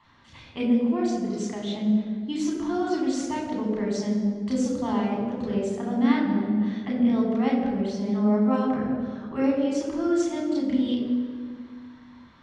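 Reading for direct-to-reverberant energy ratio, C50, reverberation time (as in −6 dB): −3.5 dB, 2.0 dB, 1.8 s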